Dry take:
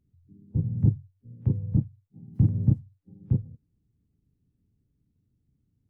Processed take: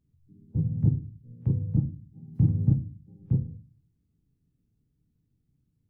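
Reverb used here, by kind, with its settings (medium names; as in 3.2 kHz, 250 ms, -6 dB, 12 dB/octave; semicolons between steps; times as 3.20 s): simulated room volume 200 m³, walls furnished, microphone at 0.63 m; trim -2 dB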